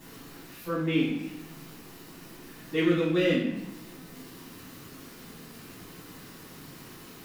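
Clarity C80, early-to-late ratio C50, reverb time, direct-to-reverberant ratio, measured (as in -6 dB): 6.0 dB, 3.0 dB, 0.75 s, -7.0 dB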